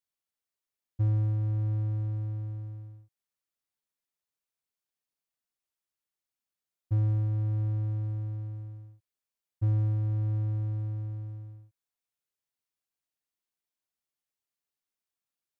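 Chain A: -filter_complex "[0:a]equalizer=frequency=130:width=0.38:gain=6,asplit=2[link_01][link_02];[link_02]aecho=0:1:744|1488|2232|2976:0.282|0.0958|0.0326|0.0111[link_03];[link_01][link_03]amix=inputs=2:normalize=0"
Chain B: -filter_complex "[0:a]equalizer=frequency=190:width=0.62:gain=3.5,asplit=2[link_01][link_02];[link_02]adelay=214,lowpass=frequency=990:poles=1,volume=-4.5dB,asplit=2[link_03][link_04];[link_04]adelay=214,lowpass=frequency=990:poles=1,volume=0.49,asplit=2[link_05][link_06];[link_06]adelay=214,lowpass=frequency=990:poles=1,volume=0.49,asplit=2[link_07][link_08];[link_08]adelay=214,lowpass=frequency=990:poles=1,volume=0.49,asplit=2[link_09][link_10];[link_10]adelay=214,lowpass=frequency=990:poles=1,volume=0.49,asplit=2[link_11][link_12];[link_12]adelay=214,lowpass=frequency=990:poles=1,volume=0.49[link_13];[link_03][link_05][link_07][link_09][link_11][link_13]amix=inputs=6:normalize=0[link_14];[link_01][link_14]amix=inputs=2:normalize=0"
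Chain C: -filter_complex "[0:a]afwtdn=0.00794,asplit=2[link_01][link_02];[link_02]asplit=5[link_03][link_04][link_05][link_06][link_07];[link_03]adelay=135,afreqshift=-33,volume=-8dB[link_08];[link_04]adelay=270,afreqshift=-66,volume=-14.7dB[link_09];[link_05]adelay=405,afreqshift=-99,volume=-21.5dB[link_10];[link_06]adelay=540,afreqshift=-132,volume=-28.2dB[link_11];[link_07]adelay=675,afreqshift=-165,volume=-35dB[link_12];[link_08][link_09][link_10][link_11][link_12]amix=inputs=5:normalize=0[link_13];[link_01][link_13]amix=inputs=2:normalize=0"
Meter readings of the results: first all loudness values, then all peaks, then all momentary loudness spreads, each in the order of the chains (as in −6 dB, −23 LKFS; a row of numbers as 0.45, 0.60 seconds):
−25.5, −25.0, −30.5 LKFS; −13.5, −15.5, −18.0 dBFS; 17, 16, 14 LU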